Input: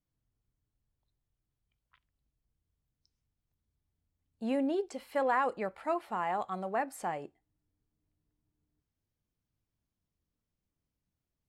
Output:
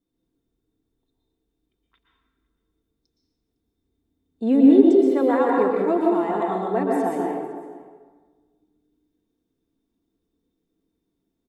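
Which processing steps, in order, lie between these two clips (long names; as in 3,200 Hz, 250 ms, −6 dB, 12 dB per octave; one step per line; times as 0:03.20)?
parametric band 430 Hz +5.5 dB 2.2 octaves
notch filter 620 Hz, Q 17
comb filter 4.4 ms, depth 48%
hollow resonant body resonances 330/3,600 Hz, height 18 dB, ringing for 35 ms
on a send: single-tap delay 507 ms −22 dB
on the sum: dense smooth reverb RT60 1.4 s, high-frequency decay 0.6×, pre-delay 105 ms, DRR −2 dB
level −2 dB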